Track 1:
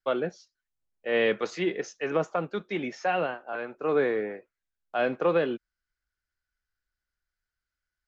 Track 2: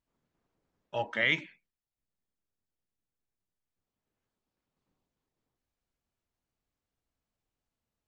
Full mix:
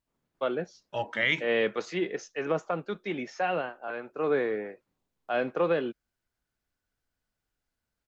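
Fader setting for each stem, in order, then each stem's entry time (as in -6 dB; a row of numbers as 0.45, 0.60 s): -2.0, +1.0 dB; 0.35, 0.00 s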